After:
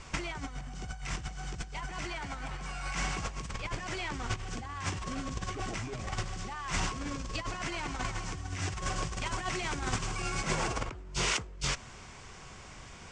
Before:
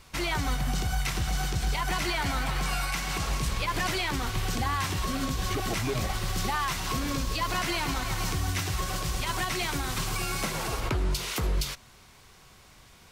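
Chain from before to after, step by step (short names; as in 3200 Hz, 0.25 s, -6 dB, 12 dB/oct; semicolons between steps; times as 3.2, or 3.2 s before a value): steep low-pass 8200 Hz 48 dB/oct; bell 4000 Hz -8 dB 0.44 oct; negative-ratio compressor -34 dBFS, ratio -0.5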